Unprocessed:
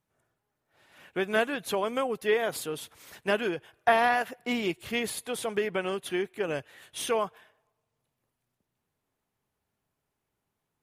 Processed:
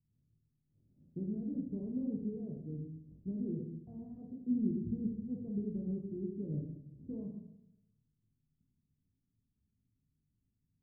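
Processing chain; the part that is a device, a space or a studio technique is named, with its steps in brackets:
club heard from the street (brickwall limiter −20.5 dBFS, peak gain reduction 11.5 dB; low-pass filter 230 Hz 24 dB per octave; convolution reverb RT60 0.80 s, pre-delay 19 ms, DRR −0.5 dB)
level +2.5 dB

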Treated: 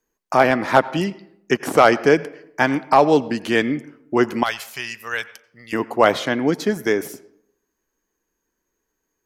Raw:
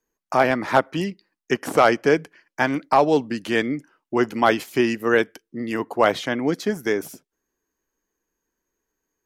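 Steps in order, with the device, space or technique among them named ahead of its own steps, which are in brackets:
filtered reverb send (on a send: high-pass filter 230 Hz 6 dB per octave + low-pass filter 5,700 Hz 12 dB per octave + convolution reverb RT60 0.70 s, pre-delay 82 ms, DRR 18 dB)
0:04.43–0:05.73: on the sum: guitar amp tone stack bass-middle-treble 10-0-10
level +3 dB

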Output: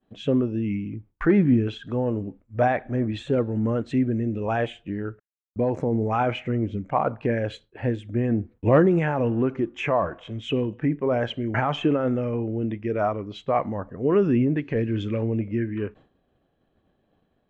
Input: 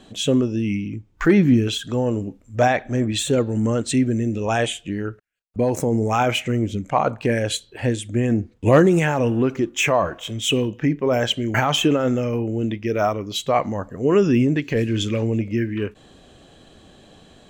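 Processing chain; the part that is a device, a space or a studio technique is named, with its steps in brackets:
hearing-loss simulation (low-pass filter 1,900 Hz 12 dB per octave; downward expander −38 dBFS)
level −3.5 dB

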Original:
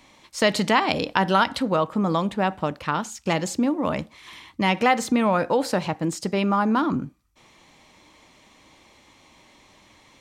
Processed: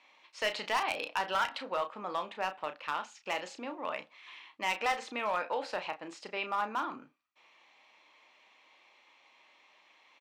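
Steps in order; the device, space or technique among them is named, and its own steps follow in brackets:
megaphone (band-pass filter 650–3,700 Hz; parametric band 2,600 Hz +6 dB 0.33 octaves; hard clipping −16.5 dBFS, distortion −12 dB; double-tracking delay 33 ms −8.5 dB)
level −8 dB

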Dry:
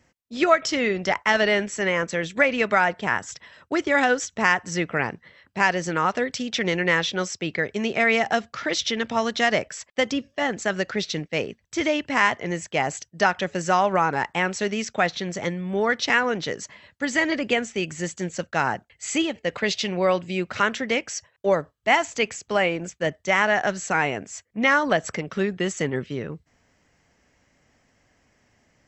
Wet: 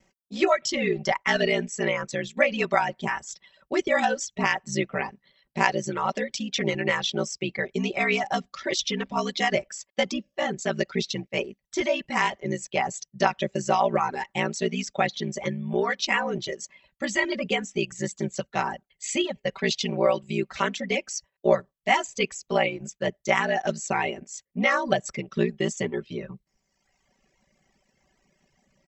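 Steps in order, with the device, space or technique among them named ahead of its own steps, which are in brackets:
ring-modulated robot voice (ring modulation 30 Hz; comb filter 5.2 ms, depth 80%)
reverb reduction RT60 1.1 s
parametric band 1,500 Hz −6.5 dB 0.58 octaves

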